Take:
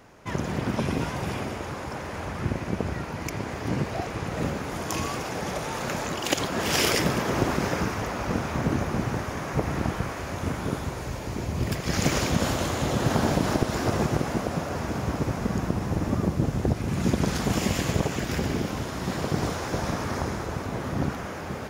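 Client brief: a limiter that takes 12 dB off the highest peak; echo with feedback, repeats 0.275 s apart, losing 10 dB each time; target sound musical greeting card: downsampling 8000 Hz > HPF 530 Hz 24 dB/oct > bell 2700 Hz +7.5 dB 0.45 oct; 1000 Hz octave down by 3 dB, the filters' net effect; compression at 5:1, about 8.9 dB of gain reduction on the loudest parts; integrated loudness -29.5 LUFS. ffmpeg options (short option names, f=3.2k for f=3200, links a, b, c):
-af "equalizer=f=1k:t=o:g=-4,acompressor=threshold=-29dB:ratio=5,alimiter=level_in=1dB:limit=-24dB:level=0:latency=1,volume=-1dB,aecho=1:1:275|550|825|1100:0.316|0.101|0.0324|0.0104,aresample=8000,aresample=44100,highpass=f=530:w=0.5412,highpass=f=530:w=1.3066,equalizer=f=2.7k:t=o:w=0.45:g=7.5,volume=9dB"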